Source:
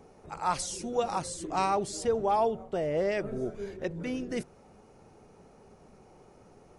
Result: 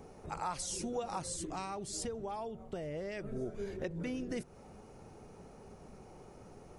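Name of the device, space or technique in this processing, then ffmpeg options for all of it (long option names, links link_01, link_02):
ASMR close-microphone chain: -filter_complex "[0:a]lowshelf=frequency=150:gain=4.5,acompressor=threshold=-37dB:ratio=4,highshelf=frequency=9400:gain=4.5,asettb=1/sr,asplit=3[link_01][link_02][link_03];[link_01]atrim=end=1.364[link_04];[link_02]atrim=start=1.36:end=3.35,asetpts=PTS-STARTPTS,afade=type=in:duration=0.004:curve=qsin,afade=type=out:start_time=1.986:duration=0.004:curve=qsin,equalizer=frequency=680:width=0.62:gain=-5[link_05];[link_03]atrim=start=3.346[link_06];[link_04][link_05]acrossfade=duration=0.004:curve1=hsin:curve2=qsin[link_07];[link_07][link_06]acrossfade=duration=0.004:curve1=qsin:curve2=hsin,volume=1dB"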